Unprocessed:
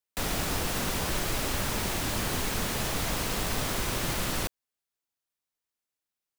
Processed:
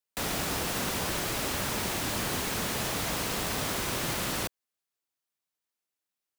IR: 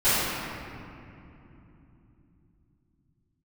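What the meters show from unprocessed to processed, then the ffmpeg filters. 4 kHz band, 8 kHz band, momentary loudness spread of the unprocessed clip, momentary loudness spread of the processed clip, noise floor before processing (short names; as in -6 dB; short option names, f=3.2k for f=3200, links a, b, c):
0.0 dB, 0.0 dB, 1 LU, 1 LU, under -85 dBFS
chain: -af "highpass=f=110:p=1"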